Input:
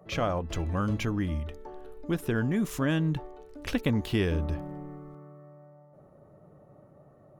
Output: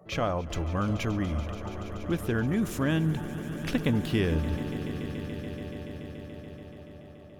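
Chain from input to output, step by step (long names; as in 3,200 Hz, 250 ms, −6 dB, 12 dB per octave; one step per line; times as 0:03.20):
echo that builds up and dies away 143 ms, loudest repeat 5, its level −16.5 dB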